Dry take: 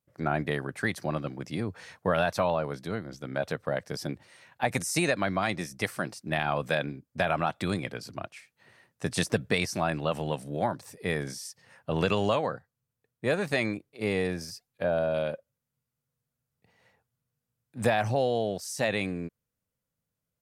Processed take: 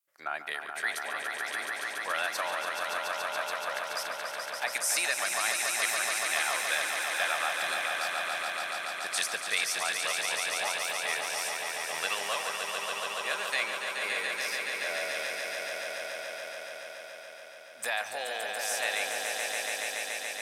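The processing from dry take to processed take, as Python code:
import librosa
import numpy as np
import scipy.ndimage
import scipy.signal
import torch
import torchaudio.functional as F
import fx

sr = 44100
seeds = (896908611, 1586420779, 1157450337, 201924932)

p1 = scipy.signal.sosfilt(scipy.signal.butter(2, 1200.0, 'highpass', fs=sr, output='sos'), x)
p2 = fx.high_shelf(p1, sr, hz=8500.0, db=8.0)
y = p2 + fx.echo_swell(p2, sr, ms=142, loudest=5, wet_db=-6.0, dry=0)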